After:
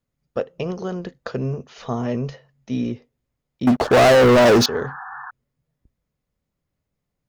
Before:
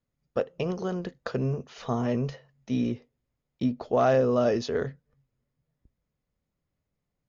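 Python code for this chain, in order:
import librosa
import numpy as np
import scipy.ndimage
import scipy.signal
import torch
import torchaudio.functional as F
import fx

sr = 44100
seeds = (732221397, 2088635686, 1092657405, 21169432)

y = fx.leveller(x, sr, passes=5, at=(3.67, 4.66))
y = fx.spec_paint(y, sr, seeds[0], shape='noise', start_s=3.83, length_s=1.48, low_hz=720.0, high_hz=1800.0, level_db=-38.0)
y = F.gain(torch.from_numpy(y), 3.0).numpy()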